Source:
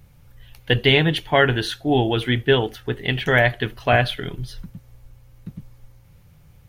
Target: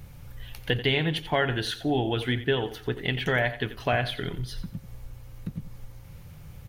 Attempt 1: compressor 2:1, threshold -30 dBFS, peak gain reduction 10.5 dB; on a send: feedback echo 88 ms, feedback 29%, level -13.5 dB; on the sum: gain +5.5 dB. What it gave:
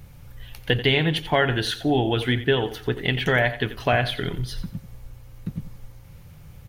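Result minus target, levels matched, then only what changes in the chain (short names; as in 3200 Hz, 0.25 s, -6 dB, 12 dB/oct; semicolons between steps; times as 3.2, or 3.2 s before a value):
compressor: peak gain reduction -4.5 dB
change: compressor 2:1, threshold -39 dBFS, peak gain reduction 15 dB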